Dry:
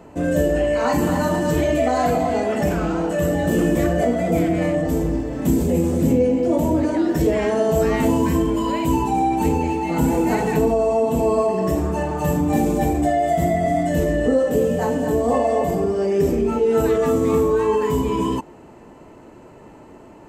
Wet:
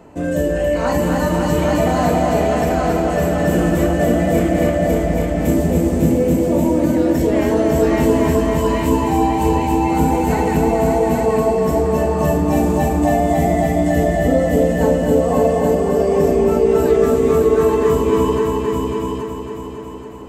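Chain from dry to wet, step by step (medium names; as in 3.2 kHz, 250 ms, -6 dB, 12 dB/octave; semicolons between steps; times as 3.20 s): multi-head delay 276 ms, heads all three, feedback 48%, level -6.5 dB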